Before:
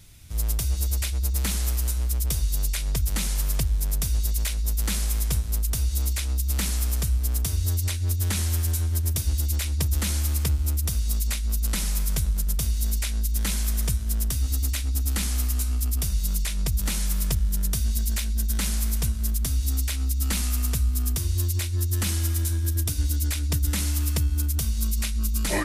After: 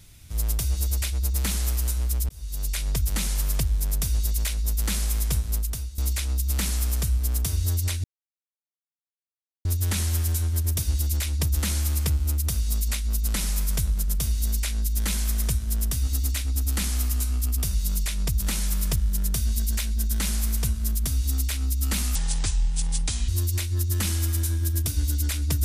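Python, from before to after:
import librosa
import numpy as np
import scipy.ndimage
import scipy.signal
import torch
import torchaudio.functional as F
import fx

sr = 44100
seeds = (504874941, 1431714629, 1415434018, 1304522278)

y = fx.edit(x, sr, fx.fade_in_span(start_s=2.29, length_s=0.5),
    fx.fade_out_to(start_s=5.54, length_s=0.44, floor_db=-18.0),
    fx.insert_silence(at_s=8.04, length_s=1.61),
    fx.speed_span(start_s=20.54, length_s=0.76, speed=0.67), tone=tone)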